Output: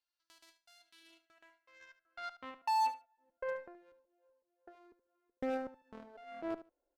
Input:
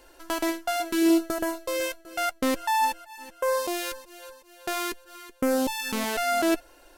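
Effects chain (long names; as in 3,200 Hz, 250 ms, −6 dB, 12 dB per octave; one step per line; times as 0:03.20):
parametric band 410 Hz −10.5 dB 1.4 octaves
band-pass filter sweep 4,500 Hz → 480 Hz, 0:00.72–0:03.39
spectral tilt −3.5 dB per octave
harmonic generator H 3 −11 dB, 5 −39 dB, 7 −42 dB, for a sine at −25.5 dBFS
repeating echo 74 ms, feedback 15%, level −14.5 dB
level −4.5 dB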